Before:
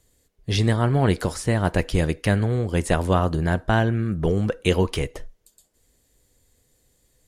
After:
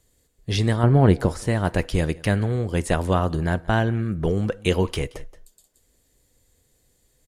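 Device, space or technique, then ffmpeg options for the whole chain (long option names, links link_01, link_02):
ducked delay: -filter_complex "[0:a]asplit=3[link_01][link_02][link_03];[link_02]adelay=176,volume=-7.5dB[link_04];[link_03]apad=whole_len=328391[link_05];[link_04][link_05]sidechaincompress=threshold=-45dB:ratio=3:attack=6.5:release=222[link_06];[link_01][link_06]amix=inputs=2:normalize=0,asettb=1/sr,asplit=3[link_07][link_08][link_09];[link_07]atrim=end=0.834[link_10];[link_08]atrim=start=0.83:end=1.42,asetpts=PTS-STARTPTS,afade=type=in:duration=0.004:curve=qsin,afade=type=out:start_time=0.586:duration=0.004:curve=qsin,tiltshelf=frequency=1400:gain=5.5[link_11];[link_09]atrim=start=1.416[link_12];[link_10][link_11]acrossfade=duration=0.004:curve1=hsin:curve2=qsin[link_13];[link_13][link_12]acrossfade=duration=0.004:curve1=qsin:curve2=hsin,volume=-1dB"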